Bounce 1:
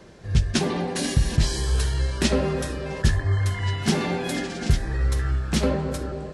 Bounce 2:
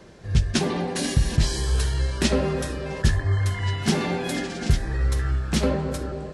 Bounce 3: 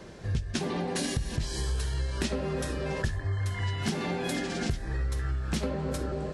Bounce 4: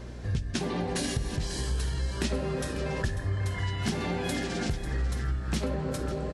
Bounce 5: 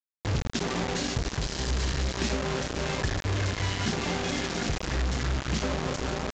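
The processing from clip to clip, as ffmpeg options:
-af anull
-af "acompressor=threshold=0.0355:ratio=6,volume=1.19"
-af "aeval=exprs='val(0)+0.01*(sin(2*PI*60*n/s)+sin(2*PI*2*60*n/s)/2+sin(2*PI*3*60*n/s)/3+sin(2*PI*4*60*n/s)/4+sin(2*PI*5*60*n/s)/5)':c=same,aecho=1:1:544:0.237"
-af "acrusher=bits=4:mix=0:aa=0.000001,aresample=16000,aresample=44100"

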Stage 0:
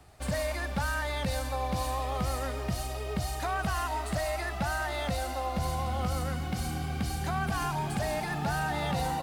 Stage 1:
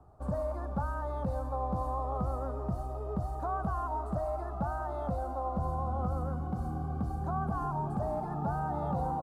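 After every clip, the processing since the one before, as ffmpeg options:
-af "firequalizer=gain_entry='entry(1200,0);entry(2000,-29);entry(7500,-22)':delay=0.05:min_phase=1,volume=0.841"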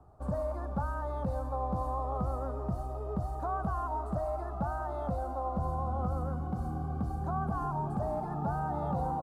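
-af anull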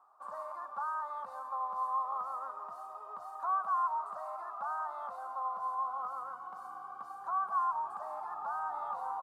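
-af "highpass=f=1100:t=q:w=4.4,volume=0.562"

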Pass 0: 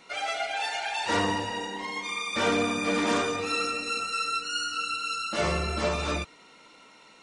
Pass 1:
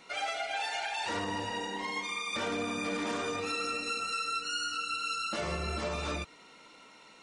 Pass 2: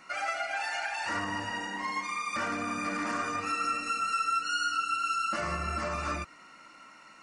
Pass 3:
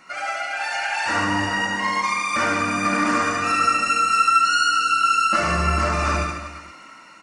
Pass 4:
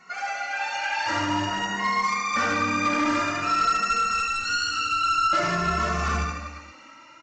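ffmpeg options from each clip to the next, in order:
-af "alimiter=limit=0.0668:level=0:latency=1:release=170,volume=0.841"
-af "superequalizer=7b=0.398:10b=2.24:11b=1.78:13b=0.316"
-af "dynaudnorm=f=240:g=7:m=2,aecho=1:1:70|150.5|243.1|349.5|472:0.631|0.398|0.251|0.158|0.1,volume=1.5"
-filter_complex "[0:a]aresample=16000,asoftclip=type=hard:threshold=0.15,aresample=44100,asplit=2[s0][s1];[s1]adelay=2.3,afreqshift=0.5[s2];[s0][s2]amix=inputs=2:normalize=1"

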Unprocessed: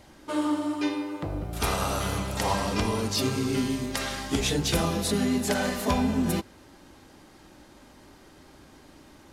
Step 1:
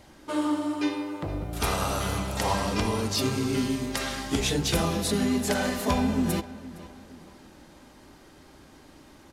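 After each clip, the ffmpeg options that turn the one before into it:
-filter_complex "[0:a]asplit=2[s0][s1];[s1]adelay=463,lowpass=f=4400:p=1,volume=0.141,asplit=2[s2][s3];[s3]adelay=463,lowpass=f=4400:p=1,volume=0.43,asplit=2[s4][s5];[s5]adelay=463,lowpass=f=4400:p=1,volume=0.43,asplit=2[s6][s7];[s7]adelay=463,lowpass=f=4400:p=1,volume=0.43[s8];[s0][s2][s4][s6][s8]amix=inputs=5:normalize=0"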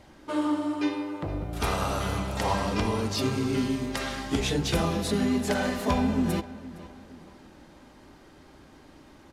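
-af "highshelf=f=5400:g=-8"

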